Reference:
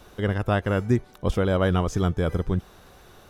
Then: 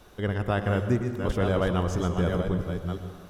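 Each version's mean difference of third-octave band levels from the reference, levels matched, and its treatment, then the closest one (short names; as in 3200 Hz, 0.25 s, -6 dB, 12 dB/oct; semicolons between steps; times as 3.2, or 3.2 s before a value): 5.0 dB: reverse delay 0.496 s, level -6 dB; plate-style reverb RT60 1.6 s, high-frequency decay 0.65×, pre-delay 95 ms, DRR 8.5 dB; gain -3.5 dB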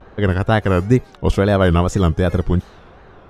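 2.5 dB: wow and flutter 140 cents; low-pass opened by the level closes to 1700 Hz, open at -18.5 dBFS; gain +7.5 dB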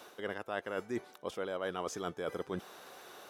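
8.5 dB: HPF 390 Hz 12 dB/oct; reverse; compressor 6:1, threshold -35 dBFS, peak gain reduction 15 dB; reverse; gain +1 dB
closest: second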